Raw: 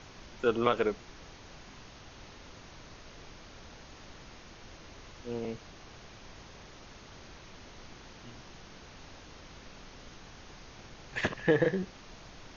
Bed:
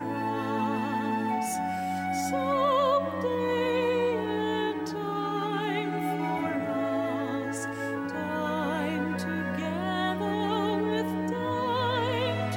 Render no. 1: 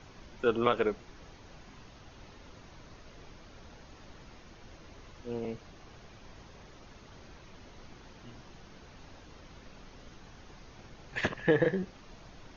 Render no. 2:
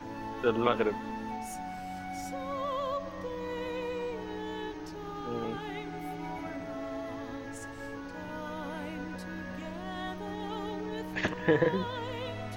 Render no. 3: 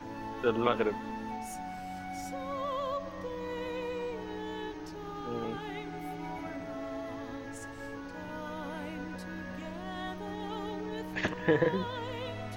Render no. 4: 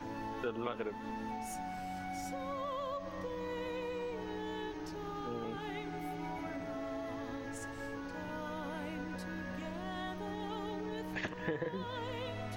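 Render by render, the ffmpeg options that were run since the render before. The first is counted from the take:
-af "afftdn=nr=6:nf=-52"
-filter_complex "[1:a]volume=-9.5dB[a];[0:a][a]amix=inputs=2:normalize=0"
-af "volume=-1dB"
-af "acompressor=threshold=-37dB:ratio=3"

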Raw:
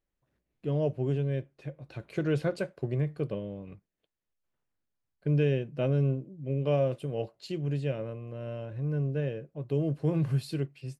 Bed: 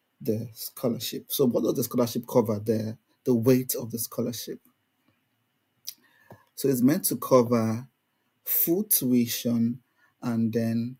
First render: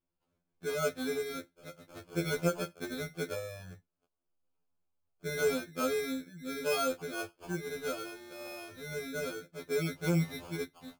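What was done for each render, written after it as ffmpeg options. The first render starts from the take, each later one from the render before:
-af "acrusher=samples=23:mix=1:aa=0.000001,afftfilt=real='re*2*eq(mod(b,4),0)':imag='im*2*eq(mod(b,4),0)':win_size=2048:overlap=0.75"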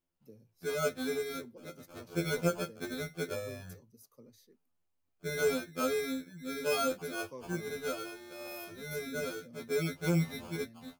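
-filter_complex "[1:a]volume=-28dB[a];[0:a][a]amix=inputs=2:normalize=0"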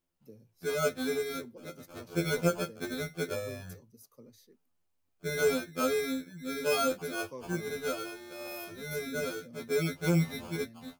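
-af "volume=2.5dB"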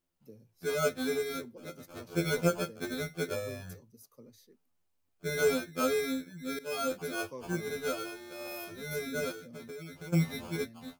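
-filter_complex "[0:a]asplit=3[a][b][c];[a]afade=t=out:st=9.31:d=0.02[d];[b]acompressor=threshold=-40dB:ratio=16:attack=3.2:release=140:knee=1:detection=peak,afade=t=in:st=9.31:d=0.02,afade=t=out:st=10.12:d=0.02[e];[c]afade=t=in:st=10.12:d=0.02[f];[d][e][f]amix=inputs=3:normalize=0,asplit=2[g][h];[g]atrim=end=6.59,asetpts=PTS-STARTPTS,afade=t=out:st=6.586:d=0.004:c=hsin:silence=0.149624[i];[h]atrim=start=6.59,asetpts=PTS-STARTPTS,afade=t=in:d=0.45:silence=0.149624[j];[i][j]concat=n=2:v=0:a=1"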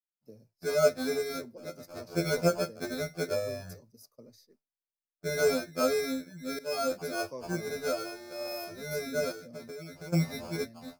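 -af "agate=range=-33dB:threshold=-56dB:ratio=3:detection=peak,equalizer=f=630:t=o:w=0.33:g=10,equalizer=f=3.15k:t=o:w=0.33:g=-10,equalizer=f=5k:t=o:w=0.33:g=10"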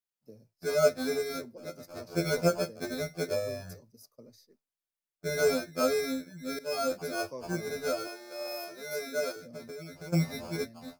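-filter_complex "[0:a]asettb=1/sr,asplit=3[a][b][c];[a]atrim=end=2.624[d];[b]atrim=start=2.62:end=3.57,asetpts=PTS-STARTPTS,afade=t=in:d=0.004:c=qsin,afade=t=out:st=0.946:d=0.004:c=qsin,bandreject=f=1.4k:w=12[e];[c]atrim=start=3.566[f];[d][e]acrossfade=d=0.004:c1=hsin:c2=qsin[g];[g][f]acrossfade=d=0.004:c1=qsin:c2=hsin,asettb=1/sr,asplit=3[h][i][j];[h]atrim=end=8.074[k];[i]atrim=start=8.07:end=9.36,asetpts=PTS-STARTPTS,afade=t=in:d=0.004:c=qsin,afade=t=out:st=1.286:d=0.004:c=qsin,highpass=340[l];[j]atrim=start=9.356[m];[k][l]acrossfade=d=0.004:c1=hsin:c2=qsin[n];[n][m]acrossfade=d=0.004:c1=qsin:c2=hsin"

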